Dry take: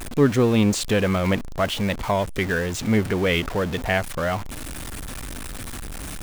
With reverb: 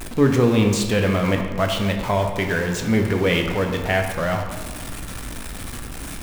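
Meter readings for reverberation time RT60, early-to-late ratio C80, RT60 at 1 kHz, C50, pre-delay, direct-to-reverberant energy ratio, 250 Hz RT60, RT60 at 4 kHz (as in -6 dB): 1.5 s, 7.0 dB, 1.5 s, 5.5 dB, 10 ms, 3.0 dB, 1.4 s, 0.90 s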